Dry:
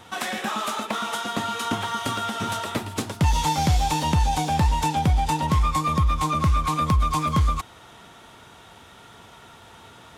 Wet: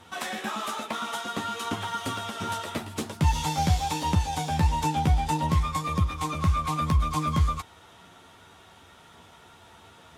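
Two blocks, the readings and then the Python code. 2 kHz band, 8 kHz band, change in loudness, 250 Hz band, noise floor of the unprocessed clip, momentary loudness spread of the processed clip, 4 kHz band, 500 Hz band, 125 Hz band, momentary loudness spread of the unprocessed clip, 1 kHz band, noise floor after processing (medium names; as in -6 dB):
-4.0 dB, -4.0 dB, -4.0 dB, -3.5 dB, -48 dBFS, 7 LU, -4.5 dB, -4.0 dB, -2.5 dB, 6 LU, -4.5 dB, -53 dBFS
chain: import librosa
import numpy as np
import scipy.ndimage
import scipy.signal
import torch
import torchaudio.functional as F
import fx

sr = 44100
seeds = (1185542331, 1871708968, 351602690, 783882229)

y = fx.cheby_harmonics(x, sr, harmonics=(3,), levels_db=(-23,), full_scale_db=-10.0)
y = fx.chorus_voices(y, sr, voices=2, hz=0.49, base_ms=12, depth_ms=1.6, mix_pct=35)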